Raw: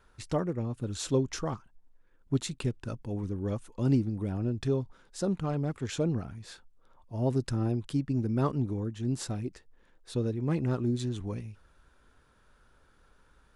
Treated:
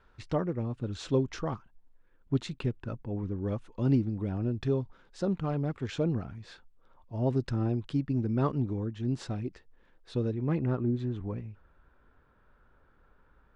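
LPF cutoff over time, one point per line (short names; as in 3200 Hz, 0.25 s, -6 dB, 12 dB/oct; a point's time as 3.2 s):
2.5 s 3800 Hz
3.11 s 2100 Hz
3.7 s 4000 Hz
10.28 s 4000 Hz
10.84 s 1900 Hz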